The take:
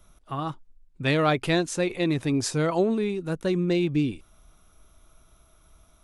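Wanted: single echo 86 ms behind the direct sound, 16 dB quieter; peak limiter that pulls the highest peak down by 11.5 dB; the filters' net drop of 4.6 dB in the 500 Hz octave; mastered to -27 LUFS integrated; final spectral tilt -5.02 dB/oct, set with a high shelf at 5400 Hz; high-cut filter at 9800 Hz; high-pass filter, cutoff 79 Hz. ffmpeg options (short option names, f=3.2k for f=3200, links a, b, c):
-af "highpass=79,lowpass=9.8k,equalizer=f=500:t=o:g=-6.5,highshelf=f=5.4k:g=6,alimiter=limit=-21dB:level=0:latency=1,aecho=1:1:86:0.158,volume=3dB"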